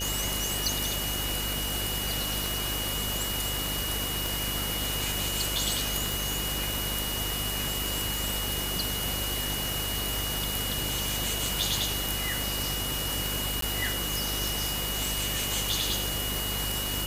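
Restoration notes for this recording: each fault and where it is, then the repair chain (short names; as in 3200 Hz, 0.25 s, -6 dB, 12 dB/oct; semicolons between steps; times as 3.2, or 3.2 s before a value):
buzz 50 Hz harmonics 11 -36 dBFS
tick 33 1/3 rpm
tone 2900 Hz -34 dBFS
6.12 pop
13.61–13.62 gap 13 ms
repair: de-click; de-hum 50 Hz, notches 11; notch 2900 Hz, Q 30; interpolate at 13.61, 13 ms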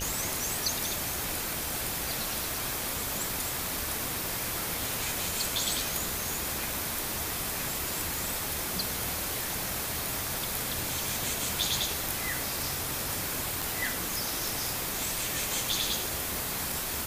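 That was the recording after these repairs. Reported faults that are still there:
none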